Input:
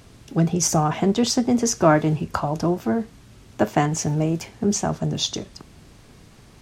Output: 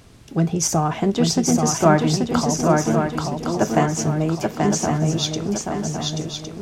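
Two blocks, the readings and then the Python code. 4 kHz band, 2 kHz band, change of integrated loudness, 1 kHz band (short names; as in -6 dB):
+2.0 dB, +2.5 dB, +1.5 dB, +2.5 dB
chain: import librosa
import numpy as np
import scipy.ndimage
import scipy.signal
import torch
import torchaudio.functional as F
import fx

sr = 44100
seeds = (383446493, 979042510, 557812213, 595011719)

p1 = x + fx.echo_swing(x, sr, ms=1110, ratio=3, feedback_pct=40, wet_db=-3.5, dry=0)
y = fx.end_taper(p1, sr, db_per_s=410.0)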